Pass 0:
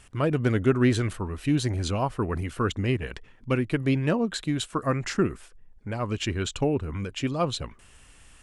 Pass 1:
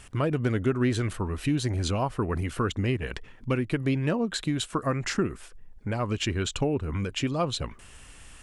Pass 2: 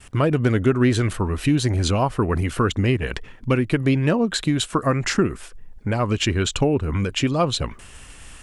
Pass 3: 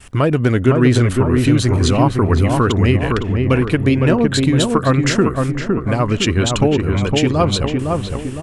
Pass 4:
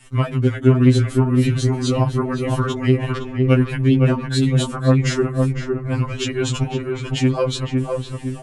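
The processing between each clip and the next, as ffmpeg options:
ffmpeg -i in.wav -af "acompressor=threshold=-32dB:ratio=2,volume=4.5dB" out.wav
ffmpeg -i in.wav -af "agate=range=-33dB:threshold=-46dB:ratio=3:detection=peak,volume=7dB" out.wav
ffmpeg -i in.wav -filter_complex "[0:a]asplit=2[link_01][link_02];[link_02]adelay=510,lowpass=frequency=1400:poles=1,volume=-3dB,asplit=2[link_03][link_04];[link_04]adelay=510,lowpass=frequency=1400:poles=1,volume=0.53,asplit=2[link_05][link_06];[link_06]adelay=510,lowpass=frequency=1400:poles=1,volume=0.53,asplit=2[link_07][link_08];[link_08]adelay=510,lowpass=frequency=1400:poles=1,volume=0.53,asplit=2[link_09][link_10];[link_10]adelay=510,lowpass=frequency=1400:poles=1,volume=0.53,asplit=2[link_11][link_12];[link_12]adelay=510,lowpass=frequency=1400:poles=1,volume=0.53,asplit=2[link_13][link_14];[link_14]adelay=510,lowpass=frequency=1400:poles=1,volume=0.53[link_15];[link_01][link_03][link_05][link_07][link_09][link_11][link_13][link_15]amix=inputs=8:normalize=0,volume=4dB" out.wav
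ffmpeg -i in.wav -af "afftfilt=real='re*2.45*eq(mod(b,6),0)':imag='im*2.45*eq(mod(b,6),0)':win_size=2048:overlap=0.75,volume=-3.5dB" out.wav

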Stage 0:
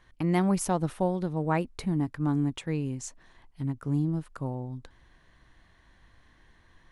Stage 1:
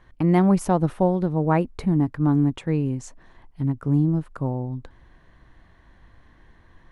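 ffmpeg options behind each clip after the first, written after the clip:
ffmpeg -i in.wav -af "highshelf=frequency=2200:gain=-11.5,volume=7.5dB" out.wav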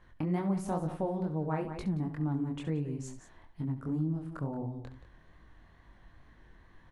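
ffmpeg -i in.wav -af "flanger=delay=19:depth=7.2:speed=2.2,aecho=1:1:68|176:0.224|0.224,acompressor=threshold=-33dB:ratio=2,volume=-2dB" out.wav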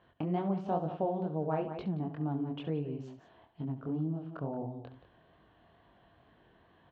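ffmpeg -i in.wav -af "highpass=110,equalizer=frequency=430:width_type=q:width=4:gain=5,equalizer=frequency=680:width_type=q:width=4:gain=9,equalizer=frequency=2000:width_type=q:width=4:gain=-7,equalizer=frequency=3000:width_type=q:width=4:gain=7,lowpass=frequency=3900:width=0.5412,lowpass=frequency=3900:width=1.3066,volume=-2dB" out.wav

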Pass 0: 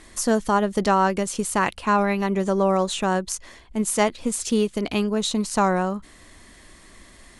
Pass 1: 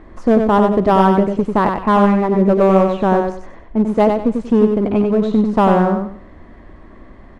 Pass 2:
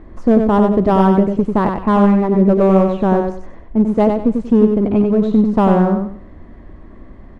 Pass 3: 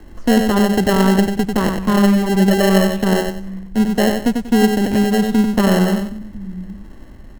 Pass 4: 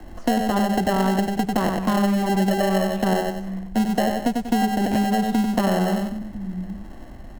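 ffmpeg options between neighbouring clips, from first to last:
ffmpeg -i in.wav -filter_complex "[0:a]lowpass=1000,asplit=2[link_01][link_02];[link_02]aeval=exprs='0.1*(abs(mod(val(0)/0.1+3,4)-2)-1)':channel_layout=same,volume=-9.5dB[link_03];[link_01][link_03]amix=inputs=2:normalize=0,aecho=1:1:94|188|282|376:0.562|0.152|0.041|0.0111,volume=7dB" out.wav
ffmpeg -i in.wav -af "lowshelf=frequency=470:gain=8,volume=-4.5dB" out.wav
ffmpeg -i in.wav -filter_complex "[0:a]acrossover=split=170|270|880[link_01][link_02][link_03][link_04];[link_01]aecho=1:1:772:0.501[link_05];[link_03]acrusher=samples=37:mix=1:aa=0.000001[link_06];[link_05][link_02][link_06][link_04]amix=inputs=4:normalize=0,volume=-1dB" out.wav
ffmpeg -i in.wav -filter_complex "[0:a]equalizer=frequency=720:width=3.7:gain=9.5,bandreject=frequency=420:width=12,acrossover=split=140|2400[link_01][link_02][link_03];[link_01]acompressor=threshold=-34dB:ratio=4[link_04];[link_02]acompressor=threshold=-19dB:ratio=4[link_05];[link_03]acompressor=threshold=-33dB:ratio=4[link_06];[link_04][link_05][link_06]amix=inputs=3:normalize=0" out.wav

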